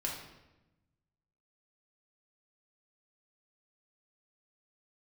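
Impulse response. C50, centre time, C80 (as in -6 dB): 3.5 dB, 43 ms, 6.5 dB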